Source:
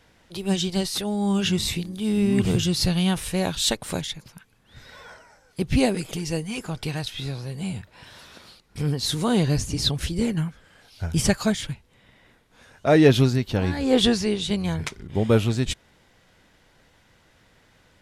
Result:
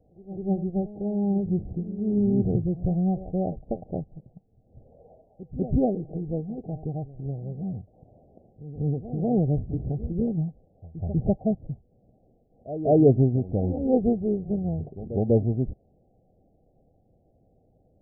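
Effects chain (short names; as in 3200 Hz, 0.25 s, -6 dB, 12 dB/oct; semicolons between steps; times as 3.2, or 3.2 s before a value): Chebyshev low-pass 780 Hz, order 8; reverse echo 0.195 s -14 dB; gain -1.5 dB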